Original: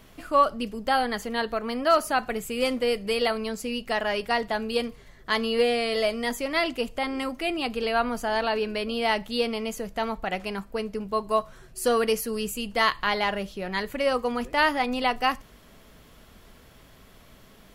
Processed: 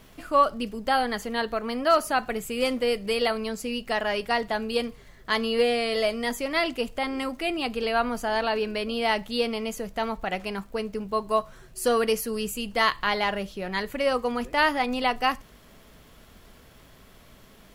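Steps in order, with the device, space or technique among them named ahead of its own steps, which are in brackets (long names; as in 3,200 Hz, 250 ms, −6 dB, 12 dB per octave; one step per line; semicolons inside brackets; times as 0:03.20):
vinyl LP (surface crackle 55 per second −47 dBFS; pink noise bed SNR 41 dB)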